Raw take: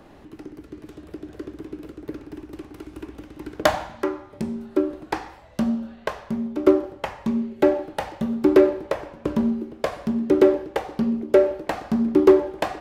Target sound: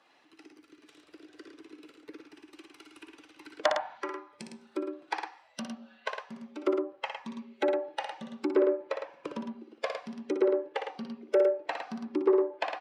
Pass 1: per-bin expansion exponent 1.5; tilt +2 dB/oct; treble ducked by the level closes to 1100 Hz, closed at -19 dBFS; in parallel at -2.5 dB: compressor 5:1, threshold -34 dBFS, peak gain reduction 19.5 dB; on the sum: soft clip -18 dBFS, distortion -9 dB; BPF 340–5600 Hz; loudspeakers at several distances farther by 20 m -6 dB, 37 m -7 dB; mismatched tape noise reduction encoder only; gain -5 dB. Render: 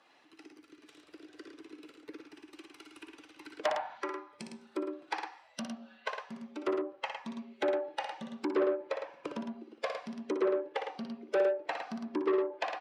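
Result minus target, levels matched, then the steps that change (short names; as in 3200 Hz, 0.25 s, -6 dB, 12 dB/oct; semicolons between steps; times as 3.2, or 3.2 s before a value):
soft clip: distortion +15 dB
change: soft clip -6 dBFS, distortion -24 dB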